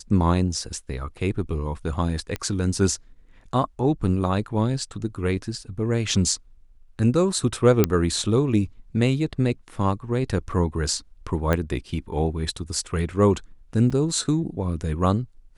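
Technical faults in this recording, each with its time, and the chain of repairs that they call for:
0:02.36: click −14 dBFS
0:07.84: click −3 dBFS
0:11.53: click −10 dBFS
0:13.90–0:13.91: drop-out 5.6 ms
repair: click removal
repair the gap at 0:13.90, 5.6 ms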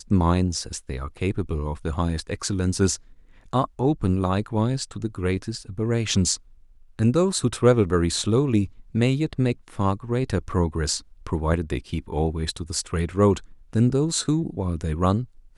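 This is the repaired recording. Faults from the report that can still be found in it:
none of them is left

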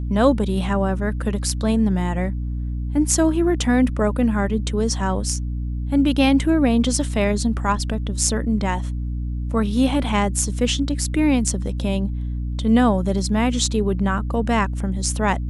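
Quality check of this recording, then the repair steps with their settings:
mains hum 60 Hz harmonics 5 −25 dBFS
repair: hum removal 60 Hz, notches 5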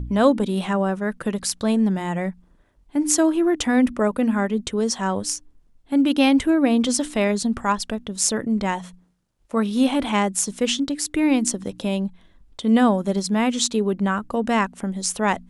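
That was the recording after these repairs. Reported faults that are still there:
none of them is left

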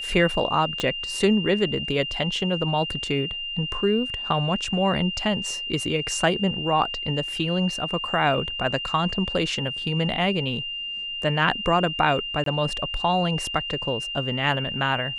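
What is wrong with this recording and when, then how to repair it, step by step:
whistle 2,800 Hz −29 dBFS
0:00.80: click −11 dBFS
0:12.44–0:12.46: drop-out 23 ms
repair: click removal
notch filter 2,800 Hz, Q 30
repair the gap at 0:12.44, 23 ms

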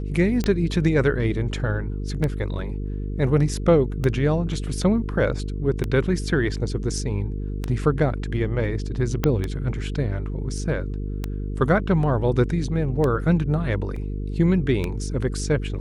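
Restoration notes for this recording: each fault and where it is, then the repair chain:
mains buzz 50 Hz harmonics 9 −28 dBFS
scratch tick 33 1/3 rpm −12 dBFS
0:09.24: click −7 dBFS
0:13.96: drop-out 3.7 ms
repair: click removal
hum removal 50 Hz, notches 9
repair the gap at 0:13.96, 3.7 ms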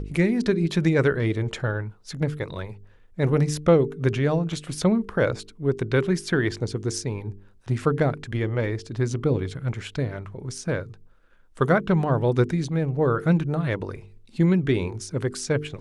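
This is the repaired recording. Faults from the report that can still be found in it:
0:09.24: click

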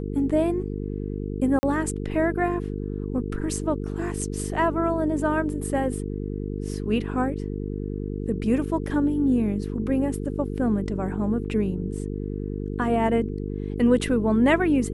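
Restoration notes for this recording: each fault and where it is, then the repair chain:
mains buzz 50 Hz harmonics 9 −30 dBFS
0:01.59–0:01.63: drop-out 40 ms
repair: hum removal 50 Hz, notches 9
repair the gap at 0:01.59, 40 ms

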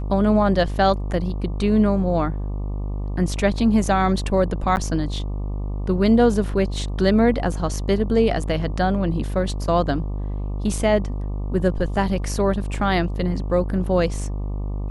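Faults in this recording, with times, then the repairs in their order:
mains buzz 50 Hz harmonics 24 −26 dBFS
0:04.76–0:04.77: drop-out 9.5 ms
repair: hum removal 50 Hz, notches 24
repair the gap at 0:04.76, 9.5 ms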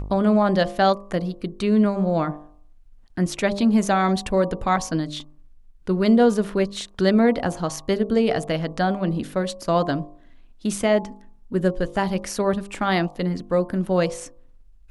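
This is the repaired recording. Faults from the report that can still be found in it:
none of them is left

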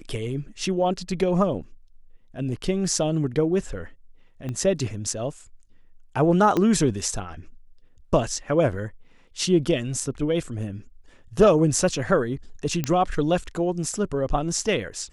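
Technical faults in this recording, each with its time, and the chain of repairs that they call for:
0:04.49: click −20 dBFS
0:06.57: click −11 dBFS
0:12.84: click −10 dBFS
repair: click removal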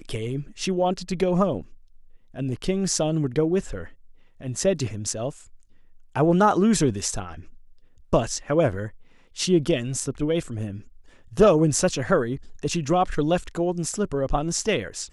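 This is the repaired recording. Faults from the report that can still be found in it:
0:04.49: click
0:06.57: click

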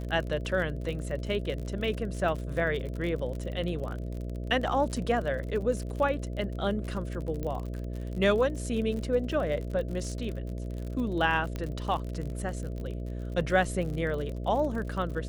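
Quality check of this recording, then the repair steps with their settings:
mains buzz 60 Hz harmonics 11 −35 dBFS
surface crackle 46 per second −35 dBFS
0:07.43: click −22 dBFS
0:11.56: click −21 dBFS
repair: click removal
hum removal 60 Hz, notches 11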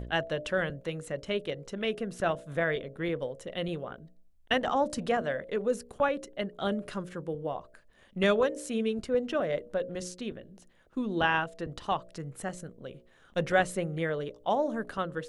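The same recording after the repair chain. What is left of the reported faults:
0:11.56: click

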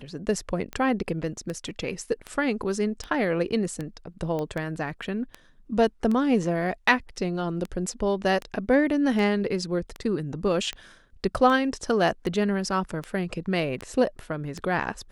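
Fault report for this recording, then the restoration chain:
scratch tick 78 rpm −19 dBFS
0:04.39: click −19 dBFS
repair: click removal

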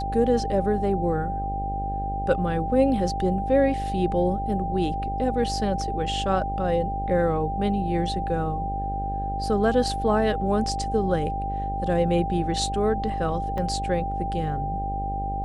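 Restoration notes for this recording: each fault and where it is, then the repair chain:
mains buzz 50 Hz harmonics 14 −31 dBFS
whistle 790 Hz −28 dBFS
0:13.58: drop-out 3.4 ms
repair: hum removal 50 Hz, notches 14
notch filter 790 Hz, Q 30
repair the gap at 0:13.58, 3.4 ms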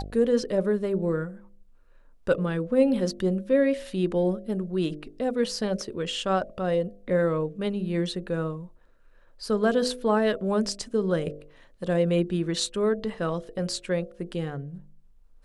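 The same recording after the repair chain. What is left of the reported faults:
none of them is left

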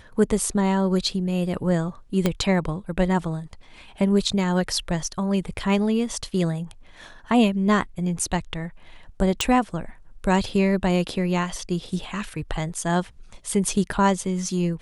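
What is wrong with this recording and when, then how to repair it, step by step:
0:02.26: click −7 dBFS
0:09.41: click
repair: click removal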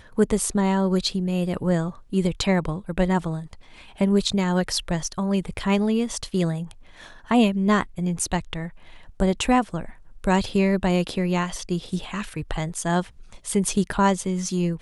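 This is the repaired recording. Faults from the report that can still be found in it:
0:02.26: click

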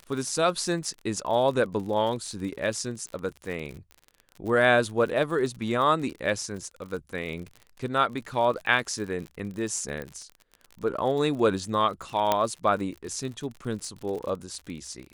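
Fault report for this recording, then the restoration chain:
surface crackle 47 per second −34 dBFS
0:10.02: click −22 dBFS
0:12.32: click −8 dBFS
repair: click removal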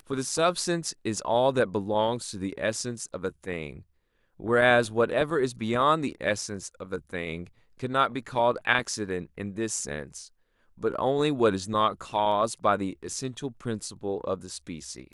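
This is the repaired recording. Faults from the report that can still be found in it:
0:12.32: click

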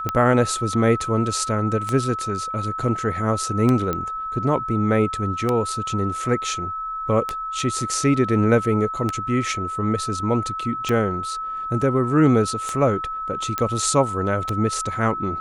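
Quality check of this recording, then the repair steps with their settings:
scratch tick 33 1/3 rpm −9 dBFS
whistle 1,300 Hz −26 dBFS
0:03.93: click −11 dBFS
0:13.58: click −8 dBFS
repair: click removal
notch filter 1,300 Hz, Q 30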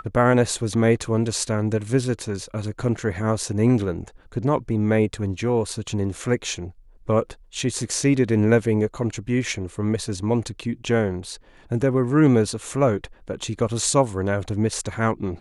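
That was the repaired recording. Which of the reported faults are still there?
none of them is left

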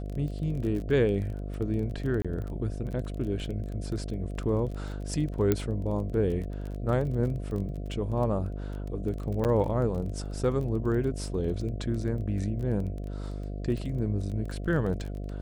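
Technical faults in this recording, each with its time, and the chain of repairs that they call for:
mains buzz 50 Hz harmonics 14 −35 dBFS
surface crackle 21 per second −35 dBFS
0:02.22–0:02.25: drop-out 26 ms
0:05.52: click −11 dBFS
0:09.44–0:09.45: drop-out 8.5 ms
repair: click removal
hum removal 50 Hz, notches 14
repair the gap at 0:02.22, 26 ms
repair the gap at 0:09.44, 8.5 ms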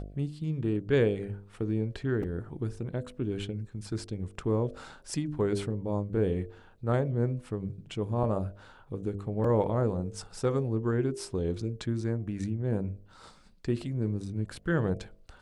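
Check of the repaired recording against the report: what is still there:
none of them is left

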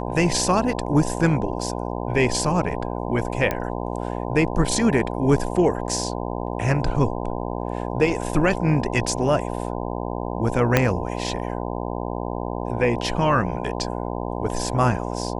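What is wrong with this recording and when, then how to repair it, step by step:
mains buzz 60 Hz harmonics 17 −28 dBFS
0:03.51: click −10 dBFS
0:10.77: click −2 dBFS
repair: click removal
hum removal 60 Hz, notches 17

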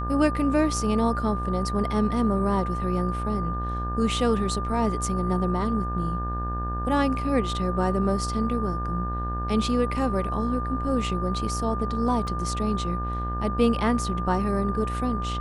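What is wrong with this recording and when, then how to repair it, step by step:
mains buzz 60 Hz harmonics 30 −30 dBFS
whistle 1,200 Hz −31 dBFS
0:12.27: drop-out 2.8 ms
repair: notch filter 1,200 Hz, Q 30
hum removal 60 Hz, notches 30
repair the gap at 0:12.27, 2.8 ms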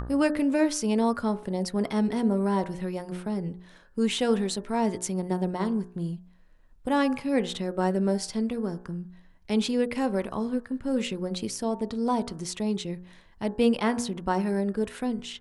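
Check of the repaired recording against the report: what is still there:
none of them is left

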